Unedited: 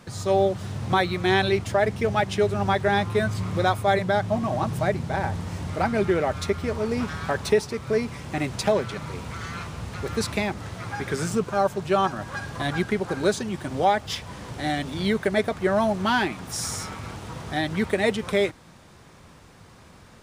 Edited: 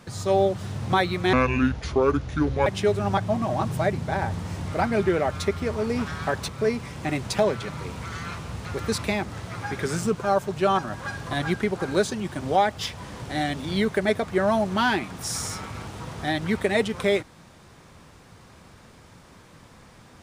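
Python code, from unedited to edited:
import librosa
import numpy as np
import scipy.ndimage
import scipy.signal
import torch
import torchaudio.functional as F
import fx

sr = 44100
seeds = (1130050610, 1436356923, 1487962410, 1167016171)

y = fx.edit(x, sr, fx.speed_span(start_s=1.33, length_s=0.88, speed=0.66),
    fx.cut(start_s=2.72, length_s=1.47),
    fx.cut(start_s=7.5, length_s=0.27), tone=tone)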